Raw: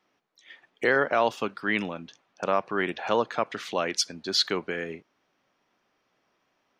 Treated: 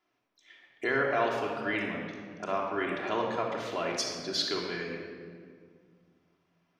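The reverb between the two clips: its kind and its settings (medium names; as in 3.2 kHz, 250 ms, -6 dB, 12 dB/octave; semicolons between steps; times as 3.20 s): simulated room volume 3200 m³, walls mixed, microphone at 3.1 m; trim -8.5 dB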